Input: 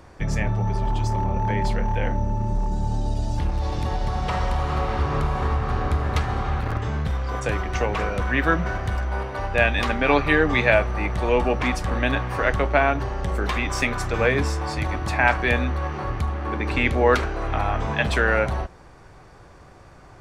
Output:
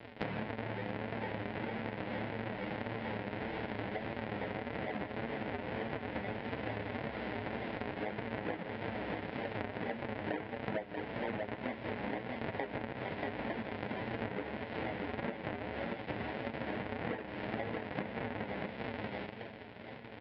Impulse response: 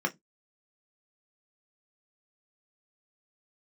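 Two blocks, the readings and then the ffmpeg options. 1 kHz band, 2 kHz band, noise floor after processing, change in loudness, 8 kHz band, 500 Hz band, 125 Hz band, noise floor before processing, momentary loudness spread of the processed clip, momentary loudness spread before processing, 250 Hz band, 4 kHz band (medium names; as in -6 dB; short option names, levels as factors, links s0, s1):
-16.0 dB, -17.0 dB, -48 dBFS, -16.5 dB, under -40 dB, -14.5 dB, -20.0 dB, -47 dBFS, 2 LU, 7 LU, -11.5 dB, -15.0 dB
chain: -filter_complex "[0:a]aresample=11025,acrusher=samples=38:mix=1:aa=0.000001:lfo=1:lforange=60.8:lforate=2.2,aresample=44100,flanger=delay=8.8:depth=1:regen=43:speed=1.7:shape=sinusoidal,aecho=1:1:635:0.355,acrossover=split=2500[s0][s1];[s1]acompressor=threshold=0.00447:ratio=4:attack=1:release=60[s2];[s0][s2]amix=inputs=2:normalize=0,highpass=260,equalizer=f=350:t=q:w=4:g=-6,equalizer=f=1200:t=q:w=4:g=-10,equalizer=f=2000:t=q:w=4:g=4,lowpass=f=3200:w=0.5412,lowpass=f=3200:w=1.3066,acompressor=threshold=0.00501:ratio=12,volume=3.76"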